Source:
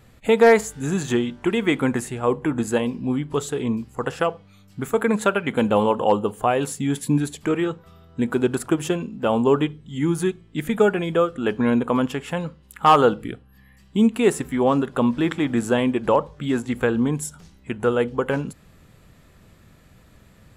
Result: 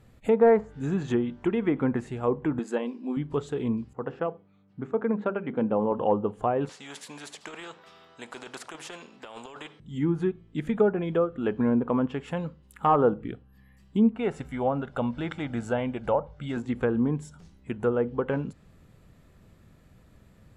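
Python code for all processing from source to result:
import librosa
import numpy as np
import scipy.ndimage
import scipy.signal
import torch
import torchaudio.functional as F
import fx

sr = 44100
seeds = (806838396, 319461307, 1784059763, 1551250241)

y = fx.chain(x, sr, fx.brickwall_highpass(low_hz=210.0),
    fx.low_shelf(hz=430.0, db=-4.5), at=(2.59, 3.17))
y = fx.chain(y, sr, fx.highpass(hz=130.0, slope=12),
    fx.spacing_loss(db_at_10k=34),
    fx.hum_notches(base_hz=50, count=8), at=(3.93, 5.92))
y = fx.chain(y, sr, fx.bandpass_edges(low_hz=720.0, high_hz=5800.0),
    fx.over_compress(threshold_db=-31.0, ratio=-1.0),
    fx.spectral_comp(ratio=2.0), at=(6.69, 9.8))
y = fx.chain(y, sr, fx.peak_eq(hz=210.0, db=-5.0, octaves=2.0),
    fx.comb(ms=1.4, depth=0.46), at=(14.16, 16.57))
y = fx.env_lowpass_down(y, sr, base_hz=1300.0, full_db=-15.0)
y = fx.tilt_shelf(y, sr, db=3.0, hz=970.0)
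y = F.gain(torch.from_numpy(y), -6.5).numpy()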